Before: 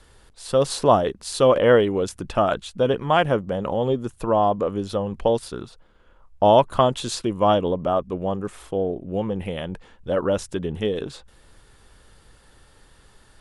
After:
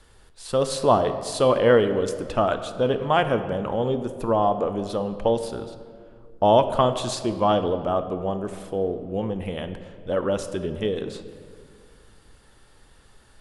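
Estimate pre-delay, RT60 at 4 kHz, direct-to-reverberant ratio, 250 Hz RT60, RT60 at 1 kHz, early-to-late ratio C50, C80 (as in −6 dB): 3 ms, 1.2 s, 9.0 dB, 2.7 s, 1.8 s, 10.5 dB, 11.5 dB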